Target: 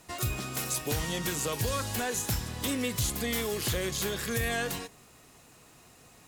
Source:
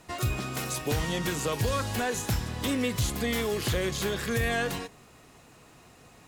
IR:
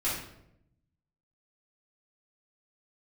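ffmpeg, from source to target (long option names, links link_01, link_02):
-af "highshelf=frequency=5200:gain=9,volume=-3.5dB"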